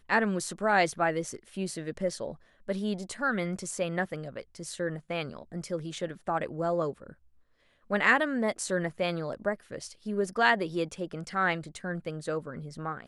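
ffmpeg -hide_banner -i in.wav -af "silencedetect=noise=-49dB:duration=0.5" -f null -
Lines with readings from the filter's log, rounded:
silence_start: 7.13
silence_end: 7.90 | silence_duration: 0.77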